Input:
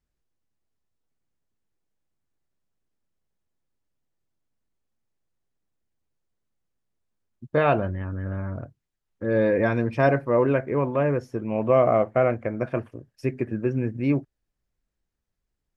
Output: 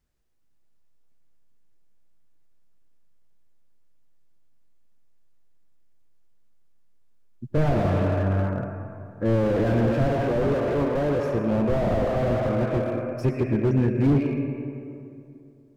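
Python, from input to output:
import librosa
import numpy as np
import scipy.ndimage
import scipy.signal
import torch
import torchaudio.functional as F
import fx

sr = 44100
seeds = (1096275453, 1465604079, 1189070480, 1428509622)

y = fx.highpass(x, sr, hz=330.0, slope=6, at=(10.06, 11.19))
y = fx.rev_freeverb(y, sr, rt60_s=2.6, hf_ratio=0.5, predelay_ms=60, drr_db=6.0)
y = fx.slew_limit(y, sr, full_power_hz=22.0)
y = y * librosa.db_to_amplitude(5.0)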